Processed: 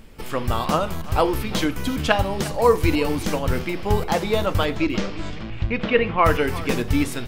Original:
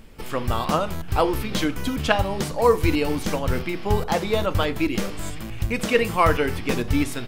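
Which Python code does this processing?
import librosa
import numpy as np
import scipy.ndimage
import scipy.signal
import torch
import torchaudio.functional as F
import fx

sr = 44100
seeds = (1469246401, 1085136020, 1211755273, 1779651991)

p1 = fx.lowpass(x, sr, hz=fx.line((4.7, 7200.0), (6.24, 2800.0)), slope=24, at=(4.7, 6.24), fade=0.02)
p2 = p1 + fx.echo_single(p1, sr, ms=351, db=-17.5, dry=0)
y = p2 * 10.0 ** (1.0 / 20.0)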